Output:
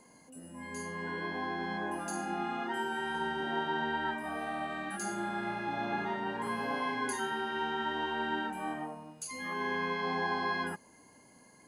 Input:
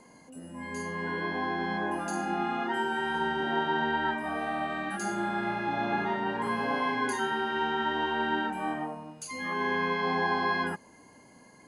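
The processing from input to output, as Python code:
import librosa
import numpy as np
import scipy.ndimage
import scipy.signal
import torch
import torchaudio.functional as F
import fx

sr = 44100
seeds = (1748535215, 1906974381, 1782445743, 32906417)

y = fx.high_shelf(x, sr, hz=8400.0, db=11.0)
y = F.gain(torch.from_numpy(y), -5.0).numpy()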